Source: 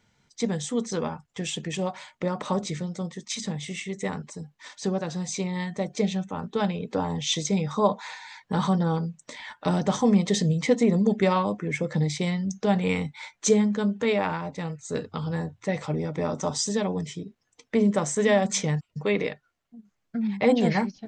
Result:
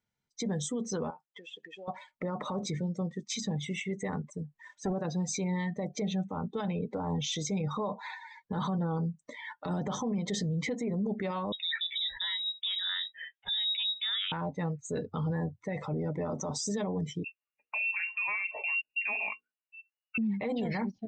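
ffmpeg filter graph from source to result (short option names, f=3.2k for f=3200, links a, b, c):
-filter_complex "[0:a]asettb=1/sr,asplit=3[a][b][c];[a]atrim=end=1.104[d];[b]atrim=start=1.1:end=1.88,asetpts=PTS-STARTPTS,afade=t=in:d=0.004:c=qsin,afade=t=out:st=0.776:d=0.004:c=qsin,acompressor=threshold=-36dB:ratio=12:attack=3.2:release=140:knee=1:detection=peak,highpass=420,lowpass=5.7k[e];[c]atrim=start=1.876[f];[d][e]acrossfade=d=0.004:c1=hsin:c2=qsin[g];[g][f]acrossfade=d=0.004:c1=qsin:c2=hsin,asettb=1/sr,asplit=3[h][i][j];[h]atrim=end=4.204[k];[i]atrim=start=4.2:end=4.93,asetpts=PTS-STARTPTS,afade=t=in:d=0.004:c=qsin,afade=t=out:st=0.726:d=0.004:c=qsin,equalizer=f=4.5k:t=o:w=0.64:g=-7.5,acompressor=mode=upward:threshold=-42dB:ratio=2.5:attack=3.2:release=140:knee=2.83:detection=peak,asoftclip=type=hard:threshold=-27.5dB[l];[j]atrim=start=4.926[m];[k][l]acrossfade=d=0.004:c1=hsin:c2=qsin[n];[n][m]acrossfade=d=0.004:c1=qsin:c2=hsin,asettb=1/sr,asplit=3[o][p][q];[o]atrim=end=11.524[r];[p]atrim=start=11.52:end=14.32,asetpts=PTS-STARTPTS,afade=t=in:d=0.004:c=qsin,afade=t=out:st=2.796:d=0.004:c=qsin,highpass=f=220:w=0.5412,highpass=f=220:w=1.3066,lowpass=f=3.4k:t=q:w=0.5098,lowpass=f=3.4k:t=q:w=0.6013,lowpass=f=3.4k:t=q:w=0.9,lowpass=f=3.4k:t=q:w=2.563,afreqshift=-4000,equalizer=f=310:t=o:w=0.87:g=-12[s];[q]atrim=start=14.316[t];[r][s]acrossfade=d=0.004:c1=hsin:c2=qsin[u];[u][t]acrossfade=d=0.004:c1=qsin:c2=hsin,asettb=1/sr,asplit=3[v][w][x];[v]atrim=end=17.244[y];[w]atrim=start=17.24:end=20.18,asetpts=PTS-STARTPTS,afade=t=in:d=0.004:c=qsin,afade=t=out:st=2.936:d=0.004:c=qsin,lowpass=f=2.5k:t=q:w=0.5098,lowpass=f=2.5k:t=q:w=0.6013,lowpass=f=2.5k:t=q:w=0.9,lowpass=f=2.5k:t=q:w=2.563,afreqshift=-2900,bandreject=f=60:t=h:w=6,bandreject=f=120:t=h:w=6,bandreject=f=180:t=h:w=6,bandreject=f=240:t=h:w=6,bandreject=f=300:t=h:w=6,bandreject=f=360:t=h:w=6,bandreject=f=420:t=h:w=6,bandreject=f=480:t=h:w=6,aecho=1:1:4.7:0.36,atrim=end_sample=129654[z];[x]atrim=start=20.176[aa];[y][z]acrossfade=d=0.004:c1=hsin:c2=qsin[ab];[ab][aa]acrossfade=d=0.004:c1=qsin:c2=hsin,afftdn=nr=21:nf=-38,acompressor=threshold=-24dB:ratio=5,alimiter=level_in=1.5dB:limit=-24dB:level=0:latency=1:release=13,volume=-1.5dB"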